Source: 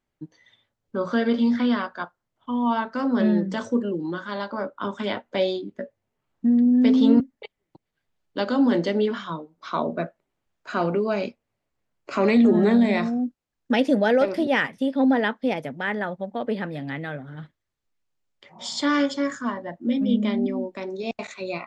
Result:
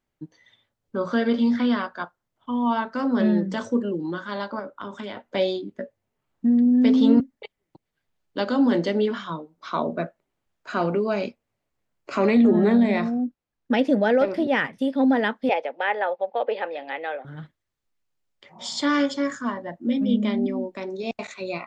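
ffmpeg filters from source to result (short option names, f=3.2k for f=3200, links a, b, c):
-filter_complex "[0:a]asettb=1/sr,asplit=3[a][b][c];[a]atrim=end=4.594[d];[b]atrim=start=4.59:end=5.31,asetpts=PTS-STARTPTS,afade=t=in:d=0.004:c=qsin,afade=t=out:st=0.716:d=0.004:c=qsin,acompressor=threshold=-30dB:ratio=6:attack=3.2:release=140:knee=1:detection=peak[e];[c]atrim=start=5.306[f];[d][e]acrossfade=d=0.004:c1=hsin:c2=qsin[g];[g][f]acrossfade=d=0.004:c1=qsin:c2=hsin,asettb=1/sr,asplit=3[h][i][j];[h]atrim=end=12.264[k];[i]atrim=start=12.26:end=14.79,asetpts=PTS-STARTPTS,afade=t=in:d=0.004:c=qsin,afade=t=out:st=2.526:d=0.004:c=qsin,lowpass=f=3.3k:p=1[l];[j]atrim=start=14.786[m];[k][l]acrossfade=d=0.004:c1=hsin:c2=qsin[n];[n][m]acrossfade=d=0.004:c1=qsin:c2=hsin,asettb=1/sr,asplit=3[o][p][q];[o]atrim=end=15.494[r];[p]atrim=start=15.49:end=17.25,asetpts=PTS-STARTPTS,afade=t=in:d=0.004:c=qsin,afade=t=out:st=1.756:d=0.004:c=qsin,highpass=f=400:w=0.5412,highpass=f=400:w=1.3066,equalizer=f=520:t=q:w=4:g=8,equalizer=f=820:t=q:w=4:g=9,equalizer=f=2.6k:t=q:w=4:g=7,lowpass=f=4.7k:w=0.5412,lowpass=f=4.7k:w=1.3066[s];[q]atrim=start=17.246[t];[r][s]acrossfade=d=0.004:c1=hsin:c2=qsin[u];[u][t]acrossfade=d=0.004:c1=qsin:c2=hsin"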